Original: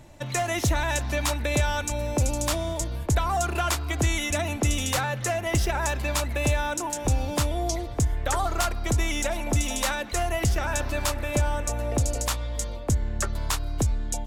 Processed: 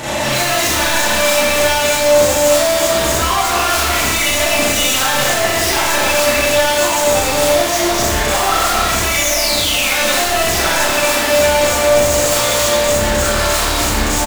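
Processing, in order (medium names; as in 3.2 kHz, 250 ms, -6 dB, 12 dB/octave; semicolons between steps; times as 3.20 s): on a send: delay 248 ms -11.5 dB; on the sum: overdrive pedal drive 36 dB, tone 7.8 kHz, clips at -13 dBFS; painted sound fall, 9.15–9.92 s, 2–7.3 kHz -19 dBFS; hard clipper -25.5 dBFS, distortion -9 dB; Schroeder reverb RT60 1 s, combs from 29 ms, DRR -9 dB; trim +1.5 dB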